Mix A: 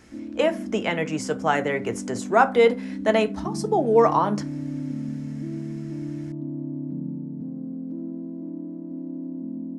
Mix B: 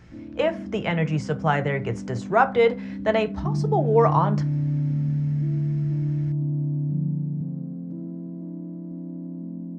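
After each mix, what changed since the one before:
speech: add high-frequency loss of the air 130 metres
master: add low shelf with overshoot 190 Hz +6.5 dB, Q 3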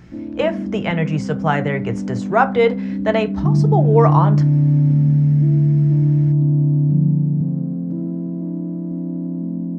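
speech +3.5 dB
background +10.0 dB

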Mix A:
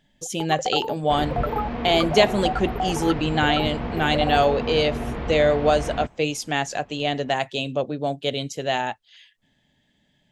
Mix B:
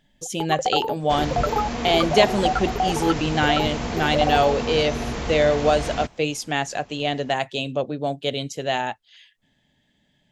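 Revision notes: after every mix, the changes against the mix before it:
first sound +3.5 dB
second sound: remove high-frequency loss of the air 420 metres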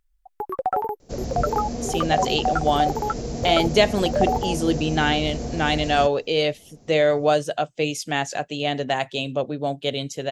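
speech: entry +1.60 s
second sound: add flat-topped bell 1,800 Hz −14.5 dB 2.4 octaves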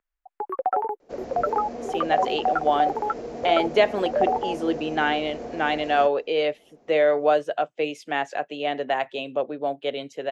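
master: add three-way crossover with the lows and the highs turned down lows −20 dB, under 280 Hz, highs −18 dB, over 2,800 Hz

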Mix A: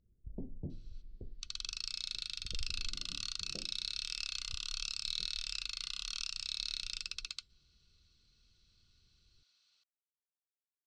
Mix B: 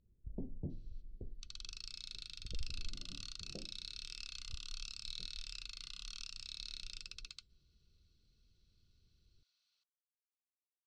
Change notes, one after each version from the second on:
second sound −8.5 dB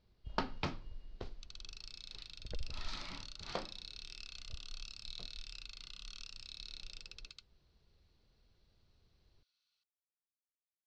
first sound: remove Gaussian smoothing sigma 22 samples
master: add high-frequency loss of the air 71 metres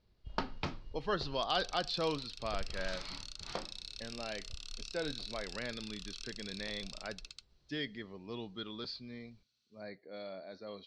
speech: unmuted
second sound: remove high-frequency loss of the air 87 metres

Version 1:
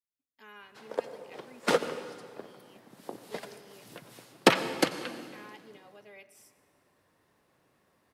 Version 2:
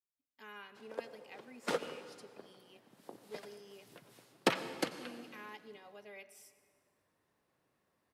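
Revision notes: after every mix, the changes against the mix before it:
background −9.5 dB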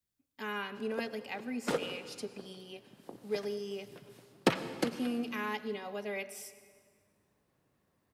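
speech +12.0 dB
master: add low-shelf EQ 260 Hz +10.5 dB

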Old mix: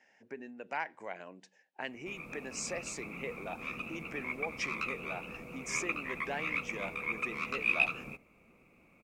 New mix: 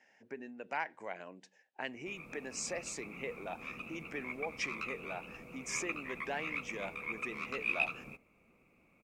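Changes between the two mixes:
background −4.0 dB
reverb: off

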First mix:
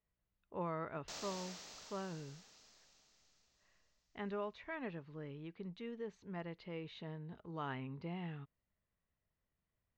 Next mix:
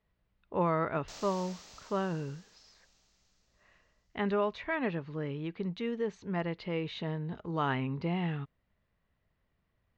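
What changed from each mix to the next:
speech +11.5 dB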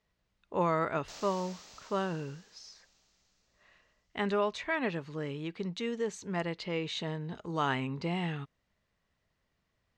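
speech: remove high-frequency loss of the air 220 metres
master: add low-shelf EQ 140 Hz −5 dB

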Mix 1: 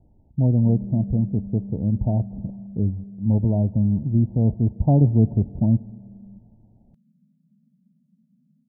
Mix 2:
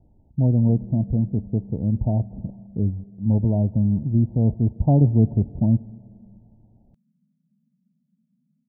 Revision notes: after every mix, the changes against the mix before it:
background −6.5 dB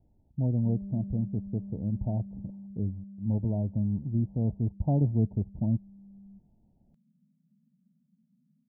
speech −8.0 dB
reverb: off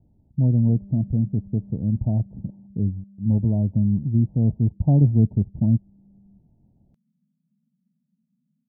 speech: add parametric band 150 Hz +9.5 dB 2.6 octaves
background −3.5 dB

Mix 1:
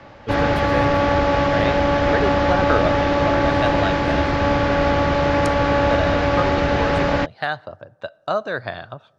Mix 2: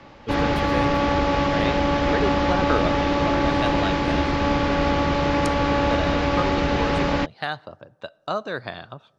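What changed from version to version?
master: add graphic EQ with 15 bands 100 Hz −7 dB, 630 Hz −6 dB, 1,600 Hz −5 dB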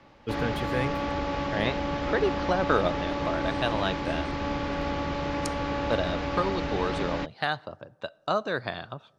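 background −9.0 dB

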